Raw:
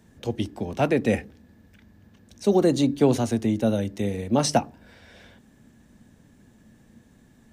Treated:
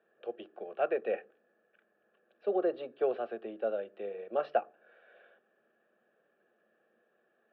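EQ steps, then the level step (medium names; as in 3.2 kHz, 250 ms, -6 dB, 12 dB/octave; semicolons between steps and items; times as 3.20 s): elliptic band-pass 310–2300 Hz, stop band 60 dB; static phaser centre 1.4 kHz, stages 8; -4.5 dB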